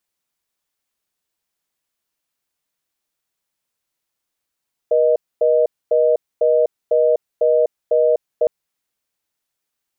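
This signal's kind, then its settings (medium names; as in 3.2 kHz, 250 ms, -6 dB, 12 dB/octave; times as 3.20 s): call progress tone reorder tone, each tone -14.5 dBFS 3.56 s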